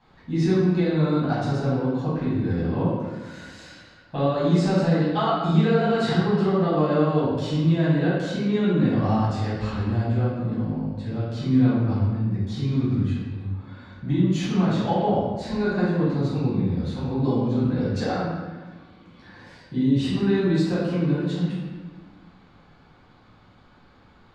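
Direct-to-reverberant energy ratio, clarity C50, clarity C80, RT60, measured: −10.5 dB, −1.5 dB, 1.5 dB, 1.4 s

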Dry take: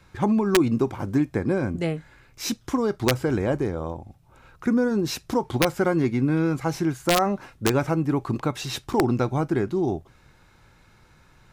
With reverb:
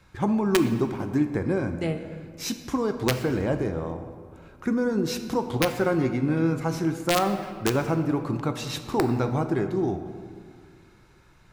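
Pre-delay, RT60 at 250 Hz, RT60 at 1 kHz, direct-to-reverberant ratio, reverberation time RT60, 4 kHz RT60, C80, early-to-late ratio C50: 6 ms, 2.2 s, 1.9 s, 7.0 dB, 2.0 s, 1.2 s, 10.5 dB, 9.0 dB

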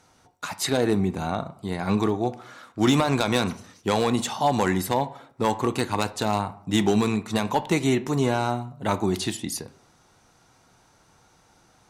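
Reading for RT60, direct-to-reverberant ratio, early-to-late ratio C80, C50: 0.60 s, 11.0 dB, 20.0 dB, 17.0 dB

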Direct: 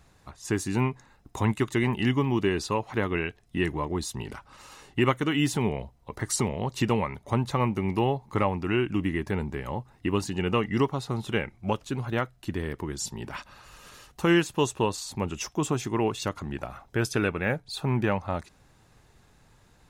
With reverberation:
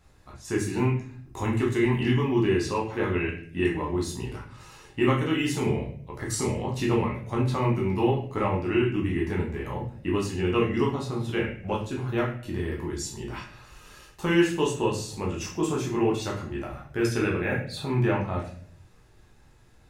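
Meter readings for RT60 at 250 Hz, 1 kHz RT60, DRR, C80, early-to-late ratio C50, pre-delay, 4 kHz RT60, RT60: 0.80 s, 0.45 s, −3.5 dB, 10.5 dB, 6.5 dB, 11 ms, 0.40 s, 0.55 s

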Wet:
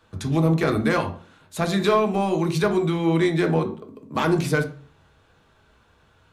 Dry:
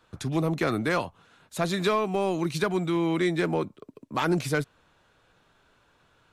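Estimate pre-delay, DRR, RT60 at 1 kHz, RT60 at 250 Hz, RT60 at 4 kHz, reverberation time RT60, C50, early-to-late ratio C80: 3 ms, 4.0 dB, 0.45 s, 0.55 s, 0.35 s, 0.45 s, 12.0 dB, 16.5 dB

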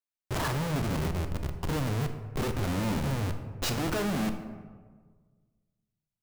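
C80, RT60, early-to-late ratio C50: 10.5 dB, 1.5 s, 9.0 dB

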